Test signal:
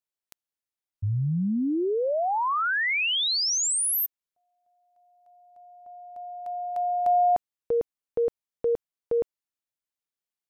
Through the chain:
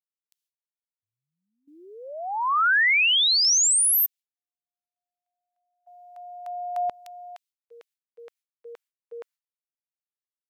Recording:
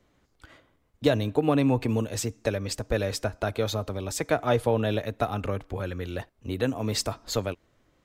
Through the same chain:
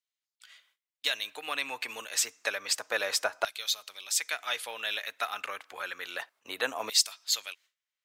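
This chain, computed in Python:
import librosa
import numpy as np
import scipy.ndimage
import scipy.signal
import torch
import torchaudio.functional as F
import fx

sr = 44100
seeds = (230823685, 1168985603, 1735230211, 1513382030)

y = fx.filter_lfo_highpass(x, sr, shape='saw_down', hz=0.29, low_hz=910.0, high_hz=3600.0, q=0.97)
y = fx.gate_hold(y, sr, open_db=-55.0, close_db=-65.0, hold_ms=90.0, range_db=-21, attack_ms=10.0, release_ms=100.0)
y = y * librosa.db_to_amplitude(5.0)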